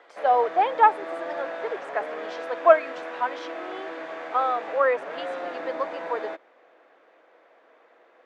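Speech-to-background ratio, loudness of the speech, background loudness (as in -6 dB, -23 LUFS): 11.0 dB, -24.0 LUFS, -35.0 LUFS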